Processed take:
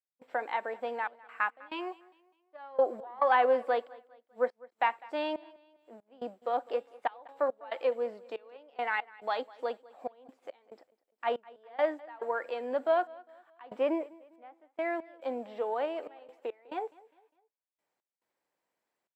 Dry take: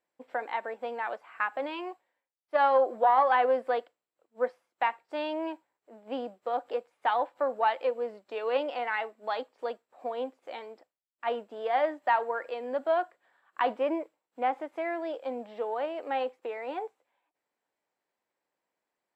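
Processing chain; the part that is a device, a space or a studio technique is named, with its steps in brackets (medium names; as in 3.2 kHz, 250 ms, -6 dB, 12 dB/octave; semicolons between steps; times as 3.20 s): 6.68–7.76 s: de-hum 275.3 Hz, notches 37; trance gate with a delay (trance gate ".xxxx.x.xxx..x" 70 bpm -24 dB; feedback delay 202 ms, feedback 40%, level -22 dB)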